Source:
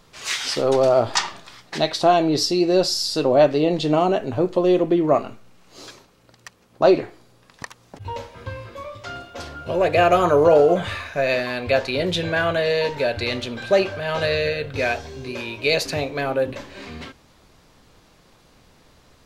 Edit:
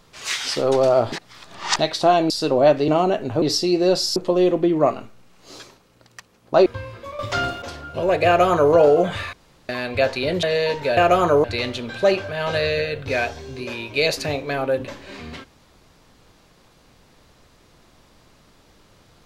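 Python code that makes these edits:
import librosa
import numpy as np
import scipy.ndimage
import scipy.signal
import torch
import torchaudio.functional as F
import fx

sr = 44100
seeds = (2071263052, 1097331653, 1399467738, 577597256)

y = fx.edit(x, sr, fx.reverse_span(start_s=1.12, length_s=0.67),
    fx.move(start_s=2.3, length_s=0.74, to_s=4.44),
    fx.cut(start_s=3.62, length_s=0.28),
    fx.cut(start_s=6.94, length_s=1.44),
    fx.clip_gain(start_s=8.91, length_s=0.43, db=11.0),
    fx.duplicate(start_s=9.98, length_s=0.47, to_s=13.12),
    fx.room_tone_fill(start_s=11.05, length_s=0.36),
    fx.cut(start_s=12.15, length_s=0.43), tone=tone)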